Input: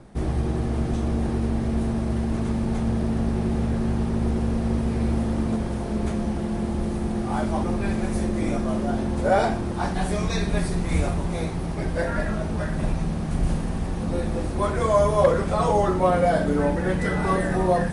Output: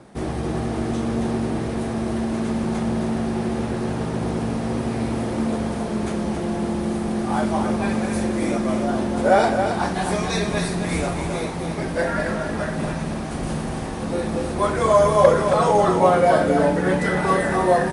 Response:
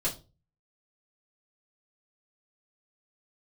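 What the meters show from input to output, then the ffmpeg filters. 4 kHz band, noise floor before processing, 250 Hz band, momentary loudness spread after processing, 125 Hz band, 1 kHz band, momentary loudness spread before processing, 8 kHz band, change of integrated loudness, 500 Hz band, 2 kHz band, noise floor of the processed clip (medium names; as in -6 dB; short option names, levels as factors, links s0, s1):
+5.5 dB, -28 dBFS, +2.0 dB, 9 LU, -1.5 dB, +5.0 dB, 7 LU, +5.5 dB, +2.5 dB, +4.5 dB, +5.0 dB, -28 dBFS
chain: -filter_complex "[0:a]highpass=f=240:p=1,asplit=2[s0][s1];[s1]aecho=0:1:271:0.473[s2];[s0][s2]amix=inputs=2:normalize=0,volume=1.68"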